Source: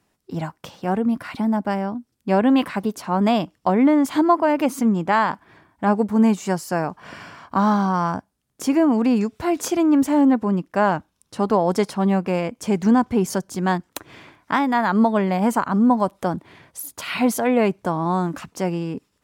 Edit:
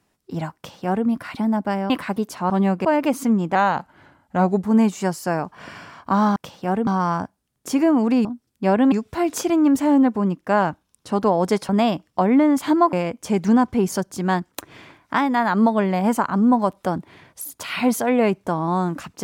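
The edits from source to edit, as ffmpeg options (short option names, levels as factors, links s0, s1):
-filter_complex "[0:a]asplit=12[s0][s1][s2][s3][s4][s5][s6][s7][s8][s9][s10][s11];[s0]atrim=end=1.902[s12];[s1]atrim=start=2.568:end=3.172[s13];[s2]atrim=start=11.958:end=12.312[s14];[s3]atrim=start=4.408:end=5.114[s15];[s4]atrim=start=5.11:end=6.1,asetpts=PTS-STARTPTS,asetrate=39690,aresample=44100[s16];[s5]atrim=start=6.096:end=7.812[s17];[s6]atrim=start=0.558:end=1.072[s18];[s7]atrim=start=7.808:end=9.192[s19];[s8]atrim=start=1.898:end=2.572[s20];[s9]atrim=start=9.188:end=11.962[s21];[s10]atrim=start=3.168:end=4.412[s22];[s11]atrim=start=12.308[s23];[s12][s13]acrossfade=d=0.004:c1=hsin:c2=hsin[s24];[s24][s14]acrossfade=d=0.004:c1=hsin:c2=hsin[s25];[s25][s15]acrossfade=d=0.004:c1=hsin:c2=hsin[s26];[s26][s16]acrossfade=d=0.004:c1=hsin:c2=hsin[s27];[s27][s17]acrossfade=d=0.004:c1=hsin:c2=hsin[s28];[s28][s18]acrossfade=d=0.004:c1=hsin:c2=hsin[s29];[s29][s19]acrossfade=d=0.004:c1=hsin:c2=hsin[s30];[s30][s20]acrossfade=d=0.004:c1=hsin:c2=hsin[s31];[s31][s21]acrossfade=d=0.004:c1=hsin:c2=hsin[s32];[s32][s22]acrossfade=d=0.004:c1=hsin:c2=hsin[s33];[s33][s23]acrossfade=d=0.004:c1=hsin:c2=hsin"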